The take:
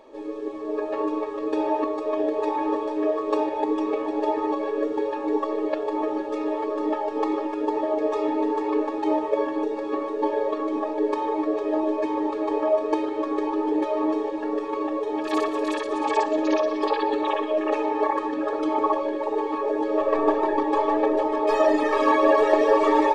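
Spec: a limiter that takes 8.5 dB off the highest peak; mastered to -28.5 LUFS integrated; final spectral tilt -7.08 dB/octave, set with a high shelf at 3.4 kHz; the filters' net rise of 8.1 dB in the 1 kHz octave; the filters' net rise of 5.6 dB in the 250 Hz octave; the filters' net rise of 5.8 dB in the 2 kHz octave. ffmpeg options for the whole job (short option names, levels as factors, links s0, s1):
-af "equalizer=f=250:t=o:g=7,equalizer=f=1000:t=o:g=8.5,equalizer=f=2000:t=o:g=6.5,highshelf=f=3400:g=-8.5,volume=0.355,alimiter=limit=0.141:level=0:latency=1"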